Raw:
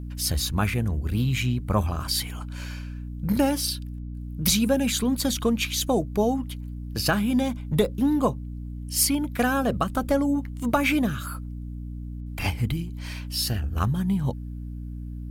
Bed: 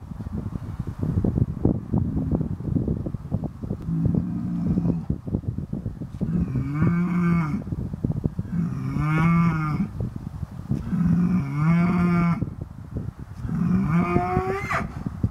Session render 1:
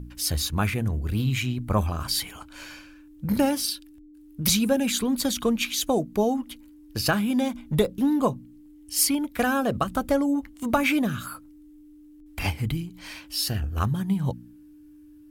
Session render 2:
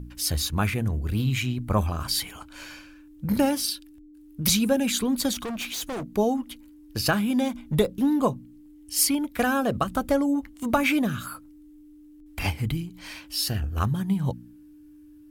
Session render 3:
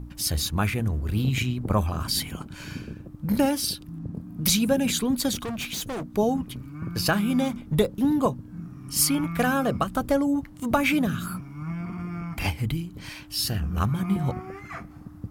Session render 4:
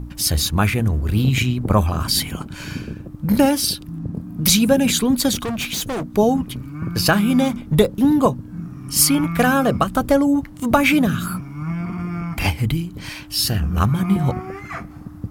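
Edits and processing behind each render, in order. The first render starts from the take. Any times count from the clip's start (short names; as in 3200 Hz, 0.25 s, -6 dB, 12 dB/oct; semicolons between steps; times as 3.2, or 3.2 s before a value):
de-hum 60 Hz, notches 4
5.33–6.04 hard clip -29.5 dBFS
add bed -13 dB
gain +7 dB; limiter -2 dBFS, peak gain reduction 1 dB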